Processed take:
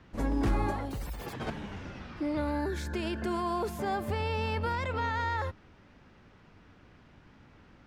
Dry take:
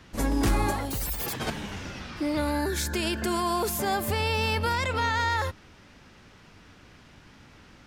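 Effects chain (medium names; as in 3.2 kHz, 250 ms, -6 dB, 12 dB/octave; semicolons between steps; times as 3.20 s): low-pass 1.6 kHz 6 dB/octave; trim -3.5 dB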